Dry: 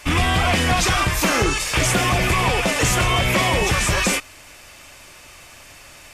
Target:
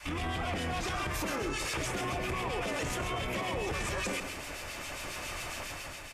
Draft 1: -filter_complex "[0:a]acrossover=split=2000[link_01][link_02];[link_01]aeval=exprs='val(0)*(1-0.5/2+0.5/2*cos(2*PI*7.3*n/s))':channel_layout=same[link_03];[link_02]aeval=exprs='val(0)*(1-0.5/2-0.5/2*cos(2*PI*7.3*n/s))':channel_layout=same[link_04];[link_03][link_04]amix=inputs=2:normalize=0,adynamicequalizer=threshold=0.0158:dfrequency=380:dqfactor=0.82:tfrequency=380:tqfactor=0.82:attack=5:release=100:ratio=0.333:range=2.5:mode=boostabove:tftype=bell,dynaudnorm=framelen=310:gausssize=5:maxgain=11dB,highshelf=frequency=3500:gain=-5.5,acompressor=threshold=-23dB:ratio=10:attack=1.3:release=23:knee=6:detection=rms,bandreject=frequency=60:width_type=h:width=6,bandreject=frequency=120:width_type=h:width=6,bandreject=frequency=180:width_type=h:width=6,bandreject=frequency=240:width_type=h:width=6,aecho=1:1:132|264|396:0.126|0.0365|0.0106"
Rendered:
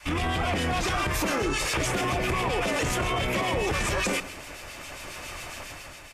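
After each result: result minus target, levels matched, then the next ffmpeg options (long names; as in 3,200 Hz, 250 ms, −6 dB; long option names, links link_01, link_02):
downward compressor: peak gain reduction −7.5 dB; echo-to-direct −8 dB
-filter_complex "[0:a]acrossover=split=2000[link_01][link_02];[link_01]aeval=exprs='val(0)*(1-0.5/2+0.5/2*cos(2*PI*7.3*n/s))':channel_layout=same[link_03];[link_02]aeval=exprs='val(0)*(1-0.5/2-0.5/2*cos(2*PI*7.3*n/s))':channel_layout=same[link_04];[link_03][link_04]amix=inputs=2:normalize=0,adynamicequalizer=threshold=0.0158:dfrequency=380:dqfactor=0.82:tfrequency=380:tqfactor=0.82:attack=5:release=100:ratio=0.333:range=2.5:mode=boostabove:tftype=bell,dynaudnorm=framelen=310:gausssize=5:maxgain=11dB,highshelf=frequency=3500:gain=-5.5,acompressor=threshold=-31.5dB:ratio=10:attack=1.3:release=23:knee=6:detection=rms,bandreject=frequency=60:width_type=h:width=6,bandreject=frequency=120:width_type=h:width=6,bandreject=frequency=180:width_type=h:width=6,bandreject=frequency=240:width_type=h:width=6,aecho=1:1:132|264|396:0.126|0.0365|0.0106"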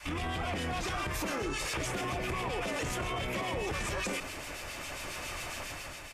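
echo-to-direct −8 dB
-filter_complex "[0:a]acrossover=split=2000[link_01][link_02];[link_01]aeval=exprs='val(0)*(1-0.5/2+0.5/2*cos(2*PI*7.3*n/s))':channel_layout=same[link_03];[link_02]aeval=exprs='val(0)*(1-0.5/2-0.5/2*cos(2*PI*7.3*n/s))':channel_layout=same[link_04];[link_03][link_04]amix=inputs=2:normalize=0,adynamicequalizer=threshold=0.0158:dfrequency=380:dqfactor=0.82:tfrequency=380:tqfactor=0.82:attack=5:release=100:ratio=0.333:range=2.5:mode=boostabove:tftype=bell,dynaudnorm=framelen=310:gausssize=5:maxgain=11dB,highshelf=frequency=3500:gain=-5.5,acompressor=threshold=-31.5dB:ratio=10:attack=1.3:release=23:knee=6:detection=rms,bandreject=frequency=60:width_type=h:width=6,bandreject=frequency=120:width_type=h:width=6,bandreject=frequency=180:width_type=h:width=6,bandreject=frequency=240:width_type=h:width=6,aecho=1:1:132|264|396:0.316|0.0917|0.0266"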